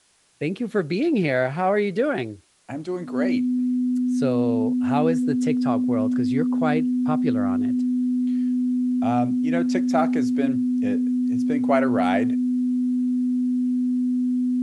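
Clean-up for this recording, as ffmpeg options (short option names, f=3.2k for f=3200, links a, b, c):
-af "bandreject=f=250:w=30,agate=range=-21dB:threshold=-22dB"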